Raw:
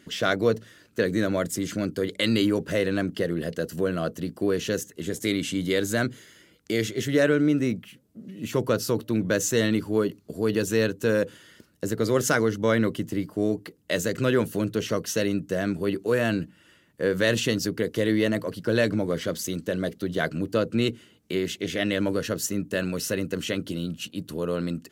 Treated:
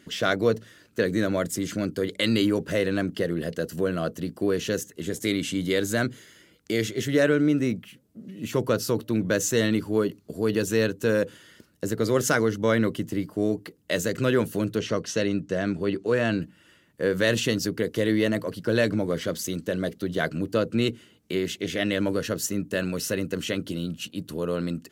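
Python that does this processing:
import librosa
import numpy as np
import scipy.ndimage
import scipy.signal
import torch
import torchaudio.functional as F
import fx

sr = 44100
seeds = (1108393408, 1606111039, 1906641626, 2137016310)

y = fx.lowpass(x, sr, hz=6600.0, slope=12, at=(14.79, 16.42))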